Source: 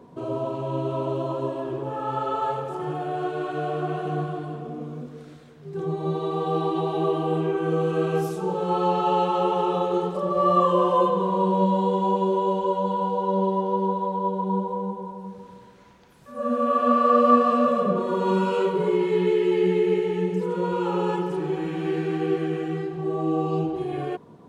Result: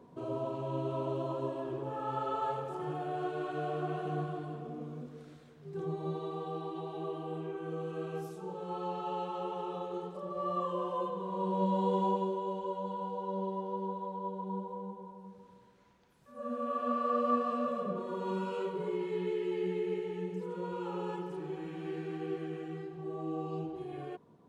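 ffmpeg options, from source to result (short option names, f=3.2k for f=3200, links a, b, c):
-af "volume=0.5dB,afade=t=out:st=5.75:d=0.84:silence=0.446684,afade=t=in:st=11.23:d=0.77:silence=0.375837,afade=t=out:st=12:d=0.36:silence=0.473151"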